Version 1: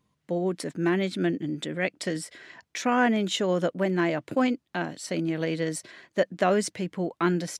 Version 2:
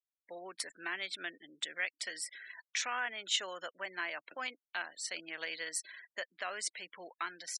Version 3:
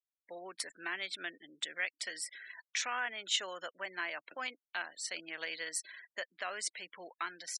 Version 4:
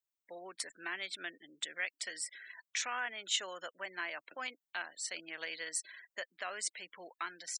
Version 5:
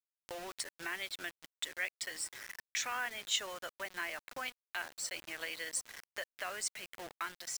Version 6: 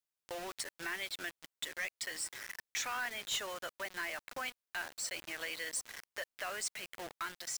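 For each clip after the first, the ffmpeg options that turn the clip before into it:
ffmpeg -i in.wav -af "alimiter=limit=-17.5dB:level=0:latency=1:release=458,afftfilt=real='re*gte(hypot(re,im),0.00562)':imag='im*gte(hypot(re,im),0.00562)':win_size=1024:overlap=0.75,highpass=1400" out.wav
ffmpeg -i in.wav -af anull out.wav
ffmpeg -i in.wav -af "aexciter=amount=1.1:drive=4.9:freq=6900,volume=-1.5dB" out.wav
ffmpeg -i in.wav -filter_complex "[0:a]asplit=2[link_01][link_02];[link_02]adelay=1399,volume=-17dB,highshelf=frequency=4000:gain=-31.5[link_03];[link_01][link_03]amix=inputs=2:normalize=0,acrusher=bits=7:mix=0:aa=0.000001,acompressor=mode=upward:threshold=-39dB:ratio=2.5" out.wav
ffmpeg -i in.wav -af "asoftclip=type=tanh:threshold=-33.5dB,volume=2.5dB" out.wav

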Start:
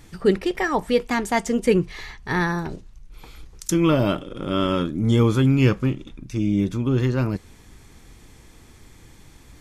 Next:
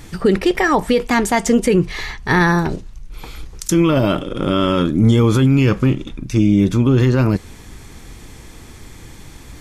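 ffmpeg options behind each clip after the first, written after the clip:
ffmpeg -i in.wav -af "alimiter=level_in=14.5dB:limit=-1dB:release=50:level=0:latency=1,volume=-4.5dB" out.wav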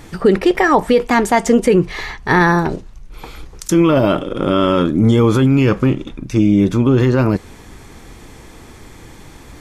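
ffmpeg -i in.wav -af "equalizer=frequency=670:width=0.36:gain=6.5,volume=-2.5dB" out.wav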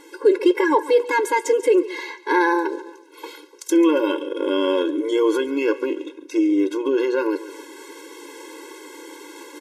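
ffmpeg -i in.wav -af "aecho=1:1:140|280|420:0.126|0.0466|0.0172,areverse,acompressor=mode=upward:threshold=-21dB:ratio=2.5,areverse,afftfilt=real='re*eq(mod(floor(b*sr/1024/280),2),1)':imag='im*eq(mod(floor(b*sr/1024/280),2),1)':win_size=1024:overlap=0.75,volume=-2.5dB" out.wav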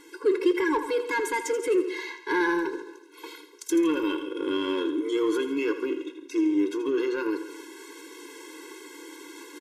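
ffmpeg -i in.wav -filter_complex "[0:a]asplit=2[link_01][link_02];[link_02]asoftclip=type=tanh:threshold=-20dB,volume=-5dB[link_03];[link_01][link_03]amix=inputs=2:normalize=0,asuperstop=centerf=660:order=4:qfactor=1.3,aecho=1:1:82|164|246|328:0.266|0.114|0.0492|0.0212,volume=-7.5dB" out.wav

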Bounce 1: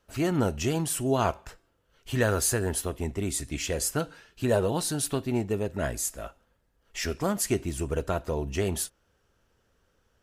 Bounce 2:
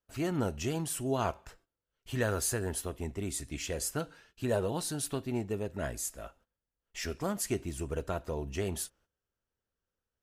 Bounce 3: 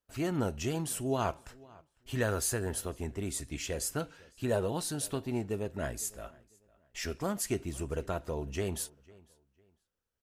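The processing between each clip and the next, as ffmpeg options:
ffmpeg -i in.wav -af "agate=range=-15dB:threshold=-56dB:ratio=16:detection=peak,volume=-6dB" out.wav
ffmpeg -i in.wav -filter_complex "[0:a]asplit=2[link_01][link_02];[link_02]adelay=502,lowpass=frequency=4100:poles=1,volume=-23.5dB,asplit=2[link_03][link_04];[link_04]adelay=502,lowpass=frequency=4100:poles=1,volume=0.29[link_05];[link_01][link_03][link_05]amix=inputs=3:normalize=0" out.wav

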